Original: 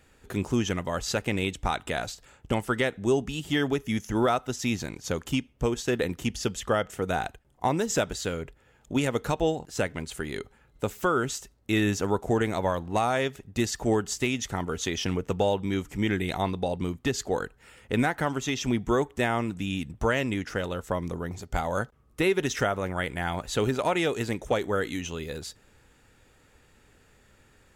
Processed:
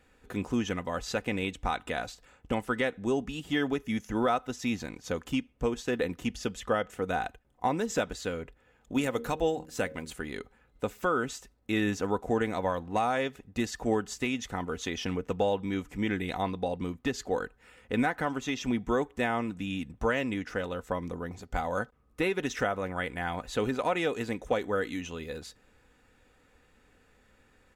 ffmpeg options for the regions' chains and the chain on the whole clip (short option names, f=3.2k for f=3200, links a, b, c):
-filter_complex "[0:a]asettb=1/sr,asplit=3[a][b][c];[a]atrim=end=8.924[d];[b]atrim=start=8.92:end=10.13,asetpts=PTS-STARTPTS,afade=t=in:d=0.004:c=qsin,afade=t=out:st=1.206:d=0.004:c=qsin,highshelf=f=9.5k:g=11.5,bandreject=f=77.99:t=h:w=4,bandreject=f=155.98:t=h:w=4,bandreject=f=233.97:t=h:w=4,bandreject=f=311.96:t=h:w=4,bandreject=f=389.95:t=h:w=4,bandreject=f=467.94:t=h:w=4,bandreject=f=545.93:t=h:w=4,deesser=0.45[e];[c]atrim=start=10.126[f];[d][e]acrossfade=d=0.004:c1=hsin:c2=qsin[g];[g][f]acrossfade=d=0.004:c1=qsin:c2=hsin,bass=f=250:g=-2,treble=f=4k:g=-6,bandreject=f=3.1k:w=29,aecho=1:1:4:0.33,volume=-3dB"